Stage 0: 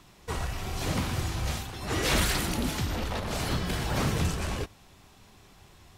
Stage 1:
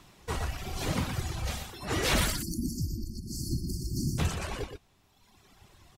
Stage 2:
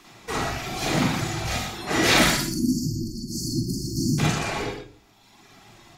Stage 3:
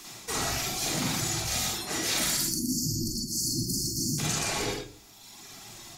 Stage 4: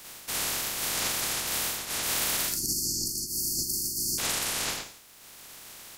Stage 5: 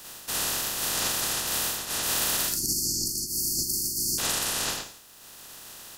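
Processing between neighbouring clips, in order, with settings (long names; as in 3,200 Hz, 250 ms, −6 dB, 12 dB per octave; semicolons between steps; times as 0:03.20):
time-frequency box erased 0:02.30–0:04.18, 380–4,300 Hz; reverb reduction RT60 1.7 s; single-tap delay 121 ms −7.5 dB
convolution reverb RT60 0.40 s, pre-delay 40 ms, DRR −3.5 dB; level +4 dB
bass and treble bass 0 dB, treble +14 dB; reversed playback; downward compressor 5 to 1, threshold −27 dBFS, peak gain reduction 15.5 dB; reversed playback
ceiling on every frequency bin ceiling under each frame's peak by 26 dB
notch filter 2,200 Hz, Q 6.3; level +2 dB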